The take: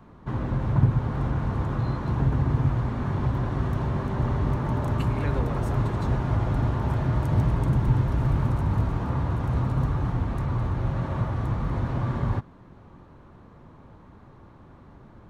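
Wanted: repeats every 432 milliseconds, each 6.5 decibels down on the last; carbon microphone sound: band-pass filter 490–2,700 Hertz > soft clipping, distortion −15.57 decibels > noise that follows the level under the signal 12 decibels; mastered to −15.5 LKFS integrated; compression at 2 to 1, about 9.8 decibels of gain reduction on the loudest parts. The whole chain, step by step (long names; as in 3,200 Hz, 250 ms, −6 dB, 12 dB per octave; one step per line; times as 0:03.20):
downward compressor 2 to 1, threshold −33 dBFS
band-pass filter 490–2,700 Hz
repeating echo 432 ms, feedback 47%, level −6.5 dB
soft clipping −37.5 dBFS
noise that follows the level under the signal 12 dB
level +29 dB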